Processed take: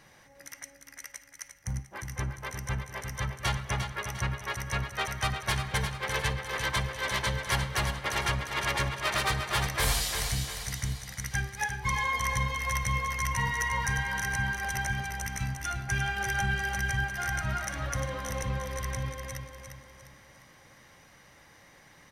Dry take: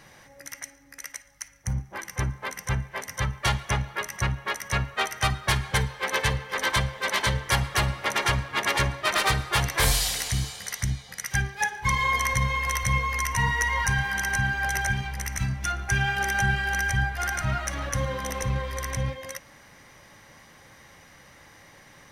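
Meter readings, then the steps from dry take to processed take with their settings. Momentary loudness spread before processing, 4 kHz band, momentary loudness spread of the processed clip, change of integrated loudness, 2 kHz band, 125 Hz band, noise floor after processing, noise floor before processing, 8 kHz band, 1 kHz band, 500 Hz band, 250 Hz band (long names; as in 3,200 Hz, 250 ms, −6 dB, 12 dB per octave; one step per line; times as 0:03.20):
10 LU, −4.5 dB, 11 LU, −4.5 dB, −4.5 dB, −4.5 dB, −57 dBFS, −53 dBFS, −4.5 dB, −4.5 dB, −4.5 dB, −4.5 dB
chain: repeating echo 351 ms, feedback 41%, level −7 dB
level −5.5 dB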